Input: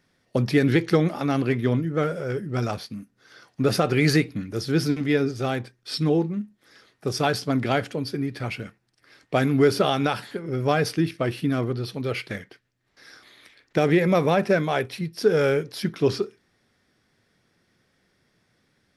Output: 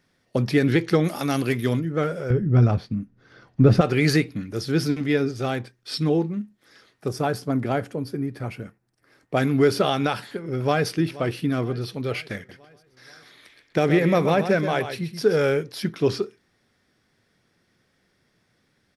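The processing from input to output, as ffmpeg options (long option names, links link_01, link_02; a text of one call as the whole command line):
ffmpeg -i in.wav -filter_complex "[0:a]asettb=1/sr,asplit=3[link_01][link_02][link_03];[link_01]atrim=end=1.044[link_04];[link_02]atrim=start=1.04:end=1.8,asetpts=PTS-STARTPTS,afade=type=in:duration=0.004:curve=qsin,afade=type=out:start_time=0.756:duration=0.004:curve=qsin,aemphasis=mode=production:type=75fm[link_05];[link_03]atrim=start=1.796[link_06];[link_04][link_05]acrossfade=duration=0.004:curve1=hsin:curve2=qsin[link_07];[link_07][link_06]acrossfade=duration=0.004:curve1=qsin:curve2=hsin,asettb=1/sr,asplit=3[link_08][link_09][link_10];[link_08]atrim=end=2.304[link_11];[link_09]atrim=start=2.3:end=3.81,asetpts=PTS-STARTPTS,afade=type=in:duration=0.004:curve=qsin,afade=type=out:start_time=1.506:duration=0.004:curve=qsin,aemphasis=mode=reproduction:type=riaa[link_12];[link_10]atrim=start=3.806[link_13];[link_11][link_12]acrossfade=duration=0.004:curve1=hsin:curve2=qsin[link_14];[link_14][link_13]acrossfade=duration=0.004:curve1=qsin:curve2=hsin,asettb=1/sr,asplit=3[link_15][link_16][link_17];[link_15]atrim=end=7.084[link_18];[link_16]atrim=start=7.08:end=9.37,asetpts=PTS-STARTPTS,afade=type=in:duration=0.004:curve=qsin,afade=type=out:start_time=2.286:duration=0.004:curve=qsin,equalizer=frequency=3600:width=0.6:gain=-10.5[link_19];[link_17]atrim=start=9.366[link_20];[link_18][link_19]acrossfade=duration=0.004:curve1=hsin:curve2=qsin[link_21];[link_21][link_20]acrossfade=duration=0.004:curve1=qsin:curve2=hsin,asplit=2[link_22][link_23];[link_23]afade=type=in:start_time=10.12:duration=0.01,afade=type=out:start_time=10.9:duration=0.01,aecho=0:1:480|960|1440|1920|2400:0.125893|0.0755355|0.0453213|0.0271928|0.0163157[link_24];[link_22][link_24]amix=inputs=2:normalize=0,asettb=1/sr,asplit=3[link_25][link_26][link_27];[link_25]atrim=end=12.364[link_28];[link_26]atrim=start=12.36:end=15.37,asetpts=PTS-STARTPTS,afade=type=in:duration=0.004:curve=qsin,afade=type=out:start_time=3.006:duration=0.004:curve=qsin,aecho=1:1:128:0.335,atrim=end_sample=132741[link_29];[link_27]atrim=start=15.366[link_30];[link_28][link_29]acrossfade=duration=0.004:curve1=hsin:curve2=qsin[link_31];[link_31][link_30]acrossfade=duration=0.004:curve1=qsin:curve2=hsin" out.wav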